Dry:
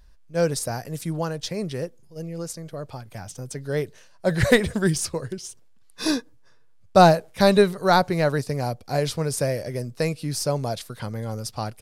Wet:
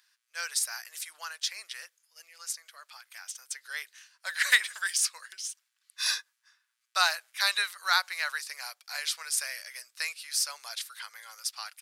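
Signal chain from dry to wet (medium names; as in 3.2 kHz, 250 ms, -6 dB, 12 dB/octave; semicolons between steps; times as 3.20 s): high-pass 1.4 kHz 24 dB/octave; trim +1.5 dB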